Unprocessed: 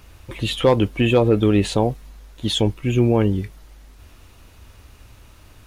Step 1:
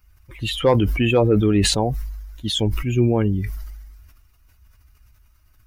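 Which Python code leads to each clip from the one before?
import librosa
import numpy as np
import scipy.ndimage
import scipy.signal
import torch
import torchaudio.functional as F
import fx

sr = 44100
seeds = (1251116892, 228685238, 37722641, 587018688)

y = fx.bin_expand(x, sr, power=1.5)
y = fx.sustainer(y, sr, db_per_s=36.0)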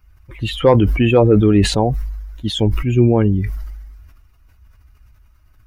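y = fx.high_shelf(x, sr, hz=3200.0, db=-10.0)
y = y * librosa.db_to_amplitude(5.0)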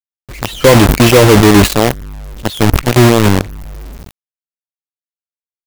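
y = fx.quant_companded(x, sr, bits=2)
y = y * librosa.db_to_amplitude(-1.0)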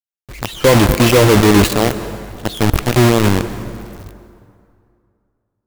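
y = fx.rev_plate(x, sr, seeds[0], rt60_s=2.4, hf_ratio=0.65, predelay_ms=115, drr_db=12.0)
y = y * librosa.db_to_amplitude(-4.0)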